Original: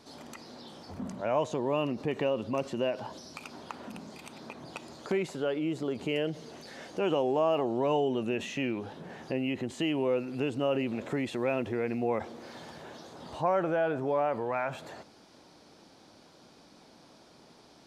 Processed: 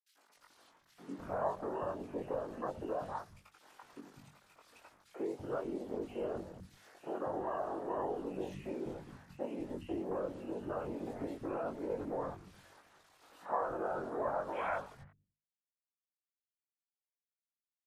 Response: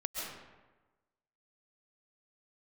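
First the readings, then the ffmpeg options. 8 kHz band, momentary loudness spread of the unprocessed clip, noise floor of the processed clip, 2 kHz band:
under -10 dB, 18 LU, under -85 dBFS, -10.5 dB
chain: -filter_complex "[0:a]tremolo=f=1.9:d=0.28,asplit=2[a][b];[1:a]atrim=start_sample=2205,asetrate=83790,aresample=44100[c];[b][c]afir=irnorm=-1:irlink=0,volume=-15.5dB[d];[a][d]amix=inputs=2:normalize=0,acrusher=bits=6:mix=0:aa=0.000001,afwtdn=0.02,acompressor=threshold=-33dB:ratio=8,afftfilt=real='hypot(re,im)*cos(2*PI*random(0))':imag='hypot(re,im)*sin(2*PI*random(1))':win_size=512:overlap=0.75,equalizer=f=1.4k:w=0.63:g=9,bandreject=f=50:t=h:w=6,bandreject=f=100:t=h:w=6,bandreject=f=150:t=h:w=6,bandreject=f=200:t=h:w=6,bandreject=f=250:t=h:w=6,asplit=2[e][f];[f]adelay=21,volume=-3dB[g];[e][g]amix=inputs=2:normalize=0,acrossover=split=190|2200[h][i][j];[i]adelay=90[k];[h]adelay=290[l];[l][k][j]amix=inputs=3:normalize=0,volume=1.5dB" -ar 48000 -c:a libmp3lame -b:a 56k

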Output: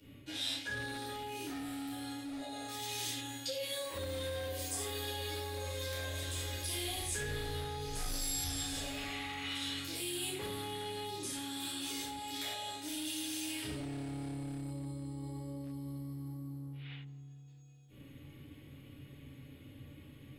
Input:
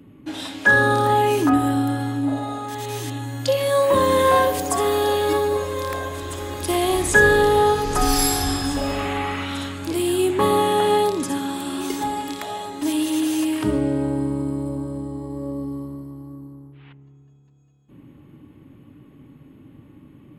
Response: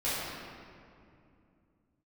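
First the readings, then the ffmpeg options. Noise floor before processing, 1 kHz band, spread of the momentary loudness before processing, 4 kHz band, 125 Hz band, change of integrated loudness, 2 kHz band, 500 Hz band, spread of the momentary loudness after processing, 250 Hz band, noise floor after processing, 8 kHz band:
-49 dBFS, -23.5 dB, 14 LU, -8.5 dB, -14.0 dB, -18.0 dB, -21.0 dB, -23.0 dB, 17 LU, -19.5 dB, -55 dBFS, -10.5 dB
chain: -filter_complex "[1:a]atrim=start_sample=2205,afade=t=out:st=0.17:d=0.01,atrim=end_sample=7938[a];[0:a][a]afir=irnorm=-1:irlink=0,acrossover=split=320[b][c];[c]acompressor=threshold=-17dB:ratio=8[d];[b][d]amix=inputs=2:normalize=0,acrossover=split=6200[e][f];[e]volume=11.5dB,asoftclip=hard,volume=-11.5dB[g];[g][f]amix=inputs=2:normalize=0,highshelf=f=2k:g=9.5,areverse,acompressor=threshold=-26dB:ratio=5,areverse,equalizer=f=250:t=o:w=1:g=-8,equalizer=f=1k:t=o:w=1:g=-10,equalizer=f=4k:t=o:w=1:g=3,volume=-9dB"

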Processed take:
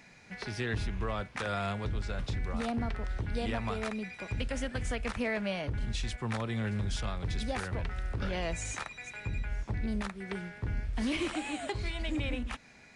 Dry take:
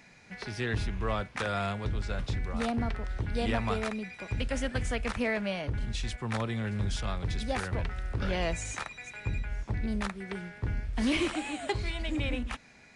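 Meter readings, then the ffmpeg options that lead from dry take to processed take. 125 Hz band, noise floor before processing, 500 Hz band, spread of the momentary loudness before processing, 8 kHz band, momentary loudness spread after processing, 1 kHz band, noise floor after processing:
-2.0 dB, -56 dBFS, -2.5 dB, 7 LU, -1.0 dB, 5 LU, -2.5 dB, -56 dBFS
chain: -af "alimiter=limit=-24dB:level=0:latency=1:release=181"

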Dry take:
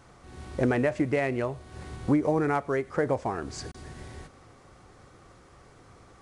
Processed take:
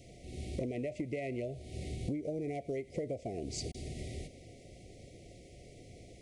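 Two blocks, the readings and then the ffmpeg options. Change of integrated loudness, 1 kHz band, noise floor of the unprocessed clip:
-11.5 dB, -17.0 dB, -55 dBFS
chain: -af "asuperstop=centerf=1200:order=20:qfactor=0.93,acompressor=threshold=-36dB:ratio=8,volume=1.5dB"

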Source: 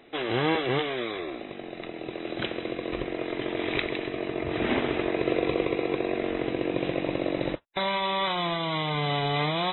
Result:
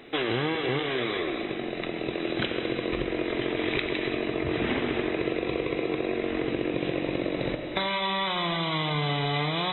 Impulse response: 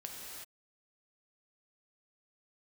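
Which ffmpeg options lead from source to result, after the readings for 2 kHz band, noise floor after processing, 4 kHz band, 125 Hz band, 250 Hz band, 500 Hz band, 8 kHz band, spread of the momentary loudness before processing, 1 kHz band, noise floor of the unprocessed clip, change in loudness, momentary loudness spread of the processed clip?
+1.0 dB, -34 dBFS, +1.5 dB, +1.0 dB, +1.0 dB, -0.5 dB, n/a, 8 LU, -1.5 dB, -41 dBFS, +0.5 dB, 4 LU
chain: -filter_complex "[0:a]asplit=2[a][b];[1:a]atrim=start_sample=2205[c];[b][c]afir=irnorm=-1:irlink=0,volume=-2dB[d];[a][d]amix=inputs=2:normalize=0,acompressor=threshold=-27dB:ratio=6,equalizer=f=710:w=1.4:g=-4,volume=4dB"

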